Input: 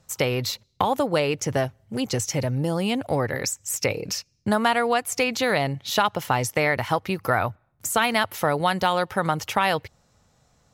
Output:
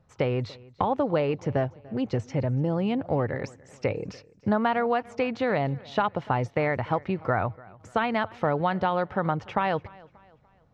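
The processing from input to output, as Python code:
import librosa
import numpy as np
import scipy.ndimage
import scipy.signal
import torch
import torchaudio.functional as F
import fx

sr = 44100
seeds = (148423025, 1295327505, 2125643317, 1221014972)

p1 = fx.spacing_loss(x, sr, db_at_10k=39)
y = p1 + fx.echo_feedback(p1, sr, ms=292, feedback_pct=41, wet_db=-23, dry=0)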